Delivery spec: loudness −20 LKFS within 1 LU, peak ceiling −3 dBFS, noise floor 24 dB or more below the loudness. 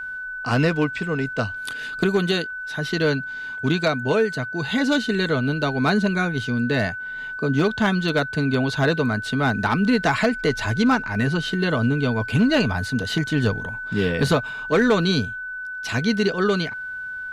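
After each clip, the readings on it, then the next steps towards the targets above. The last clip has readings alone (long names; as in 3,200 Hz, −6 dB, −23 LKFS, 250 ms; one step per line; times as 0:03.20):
share of clipped samples 0.3%; peaks flattened at −11.5 dBFS; interfering tone 1,500 Hz; level of the tone −29 dBFS; integrated loudness −22.0 LKFS; sample peak −11.5 dBFS; target loudness −20.0 LKFS
→ clipped peaks rebuilt −11.5 dBFS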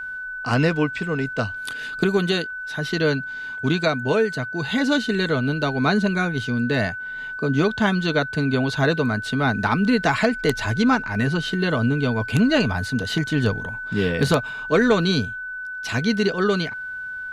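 share of clipped samples 0.0%; interfering tone 1,500 Hz; level of the tone −29 dBFS
→ notch filter 1,500 Hz, Q 30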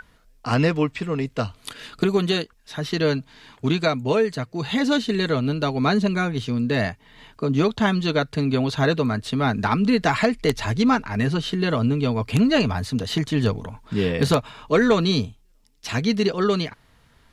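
interfering tone none found; integrated loudness −22.5 LKFS; sample peak −2.5 dBFS; target loudness −20.0 LKFS
→ level +2.5 dB
brickwall limiter −3 dBFS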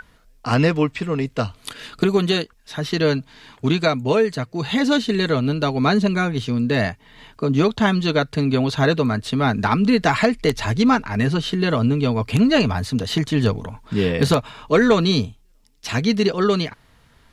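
integrated loudness −20.0 LKFS; sample peak −3.0 dBFS; background noise floor −55 dBFS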